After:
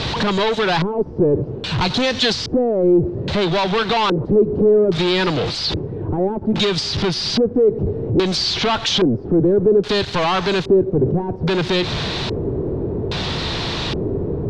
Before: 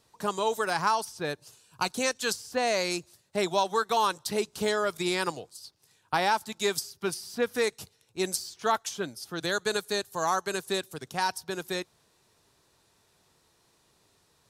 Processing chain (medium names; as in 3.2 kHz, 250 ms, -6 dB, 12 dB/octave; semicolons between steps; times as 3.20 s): jump at every zero crossing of -39 dBFS; low-pass 5.9 kHz 12 dB/octave; bass shelf 350 Hz +11 dB; compression, threshold -27 dBFS, peak gain reduction 10 dB; waveshaping leveller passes 5; LFO low-pass square 0.61 Hz 410–3800 Hz